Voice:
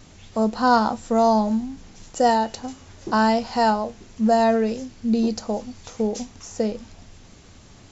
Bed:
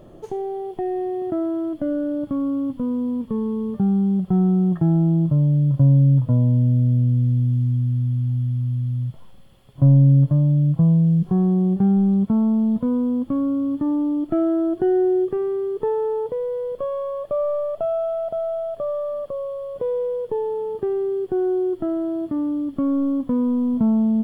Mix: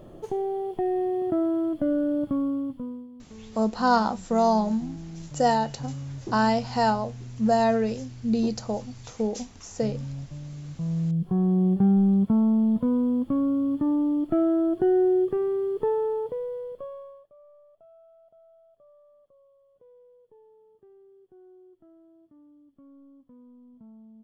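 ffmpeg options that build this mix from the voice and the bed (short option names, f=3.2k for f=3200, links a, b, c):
-filter_complex "[0:a]adelay=3200,volume=-3.5dB[a];[1:a]volume=18dB,afade=t=out:st=2.22:d=0.86:silence=0.0944061,afade=t=in:st=10.67:d=0.99:silence=0.112202,afade=t=out:st=15.89:d=1.4:silence=0.0354813[b];[a][b]amix=inputs=2:normalize=0"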